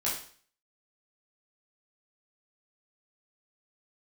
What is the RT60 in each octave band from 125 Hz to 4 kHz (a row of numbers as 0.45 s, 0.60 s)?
0.50 s, 0.45 s, 0.45 s, 0.45 s, 0.45 s, 0.50 s